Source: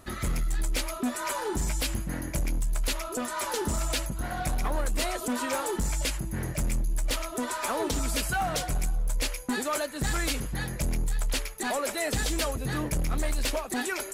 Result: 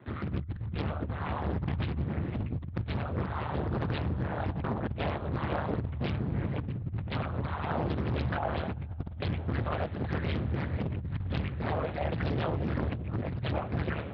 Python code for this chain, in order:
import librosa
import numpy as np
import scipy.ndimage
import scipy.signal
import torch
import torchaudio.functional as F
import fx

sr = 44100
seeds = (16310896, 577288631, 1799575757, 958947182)

y = fx.lpc_vocoder(x, sr, seeds[0], excitation='whisper', order=10)
y = fx.low_shelf(y, sr, hz=95.0, db=7.5)
y = y * np.sin(2.0 * np.pi * 75.0 * np.arange(len(y)) / sr)
y = scipy.signal.sosfilt(scipy.signal.butter(4, 71.0, 'highpass', fs=sr, output='sos'), y)
y = fx.hum_notches(y, sr, base_hz=50, count=3)
y = fx.echo_diffused(y, sr, ms=550, feedback_pct=55, wet_db=-14.5)
y = fx.over_compress(y, sr, threshold_db=-30.0, ratio=-0.5)
y = fx.high_shelf(y, sr, hz=2100.0, db=-10.5)
y = fx.doppler_dist(y, sr, depth_ms=0.81)